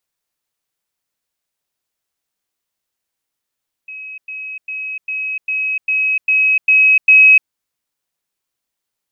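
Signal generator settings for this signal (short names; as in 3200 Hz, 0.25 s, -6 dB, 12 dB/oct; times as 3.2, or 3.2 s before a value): level ladder 2550 Hz -28 dBFS, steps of 3 dB, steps 9, 0.30 s 0.10 s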